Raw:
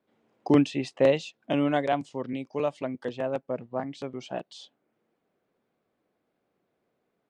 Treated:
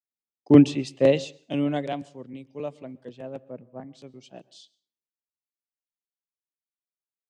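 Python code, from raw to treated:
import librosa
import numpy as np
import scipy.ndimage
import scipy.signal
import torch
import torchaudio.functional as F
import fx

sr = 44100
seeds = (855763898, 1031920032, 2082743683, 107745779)

y = fx.peak_eq(x, sr, hz=1200.0, db=-9.5, octaves=2.0)
y = fx.rev_plate(y, sr, seeds[0], rt60_s=0.66, hf_ratio=0.75, predelay_ms=110, drr_db=18.5)
y = fx.band_widen(y, sr, depth_pct=100)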